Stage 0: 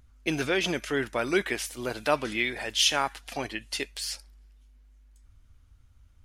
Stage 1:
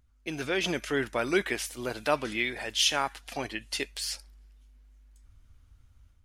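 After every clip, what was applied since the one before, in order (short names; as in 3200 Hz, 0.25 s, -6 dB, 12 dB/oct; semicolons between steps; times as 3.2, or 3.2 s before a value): AGC gain up to 8.5 dB; gain -8.5 dB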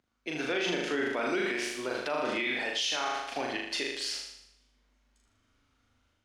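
on a send: flutter echo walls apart 6.7 m, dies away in 0.78 s; on the sum: limiter -20.5 dBFS, peak gain reduction 10.5 dB; three-band isolator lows -24 dB, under 170 Hz, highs -16 dB, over 6900 Hz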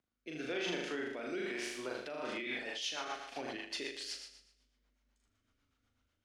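rotary speaker horn 1 Hz, later 8 Hz, at 1.96; gain -6 dB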